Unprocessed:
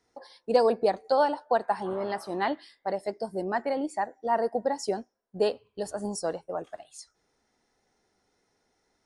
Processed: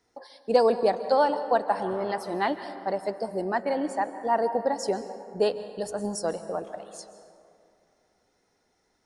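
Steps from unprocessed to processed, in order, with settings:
dense smooth reverb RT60 2.5 s, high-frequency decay 0.4×, pre-delay 120 ms, DRR 11 dB
level +1.5 dB

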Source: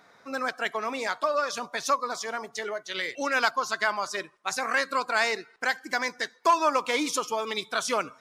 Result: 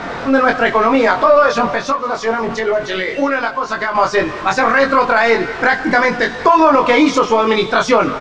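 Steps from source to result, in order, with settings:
converter with a step at zero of −35 dBFS
low-shelf EQ 360 Hz +4 dB
0:01.65–0:03.95: downward compressor 6 to 1, threshold −30 dBFS, peak gain reduction 12 dB
Bessel low-pass filter 4,500 Hz, order 6
high-shelf EQ 2,700 Hz −11 dB
double-tracking delay 22 ms −3 dB
repeating echo 184 ms, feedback 56%, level −20.5 dB
boost into a limiter +16.5 dB
level −1 dB

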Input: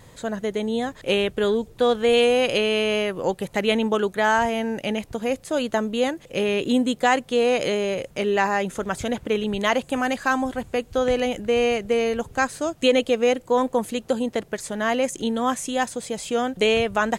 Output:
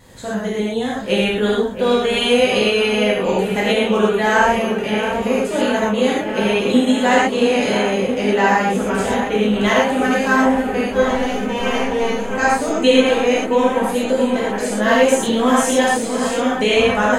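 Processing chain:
0:11.02–0:12.27: gain on one half-wave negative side −12 dB
0:14.79–0:15.98: leveller curve on the samples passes 1
on a send: delay with a low-pass on its return 673 ms, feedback 82%, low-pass 2,100 Hz, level −9.5 dB
on the sum: reverb whose tail is shaped and stops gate 150 ms flat, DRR −7 dB
level −2 dB

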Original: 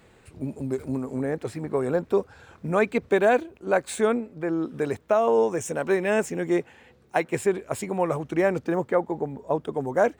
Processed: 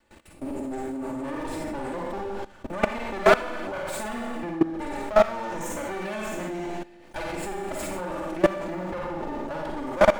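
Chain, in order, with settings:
lower of the sound and its delayed copy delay 3.4 ms
four-comb reverb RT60 0.85 s, DRR −2 dB
output level in coarse steps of 18 dB
level +4.5 dB

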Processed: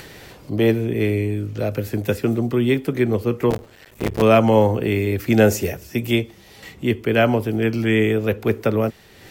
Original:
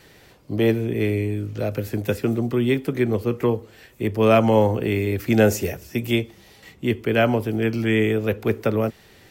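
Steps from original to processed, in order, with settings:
0:03.50–0:04.22: sub-harmonics by changed cycles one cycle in 3, muted
upward compression, threshold −34 dBFS
level +2 dB

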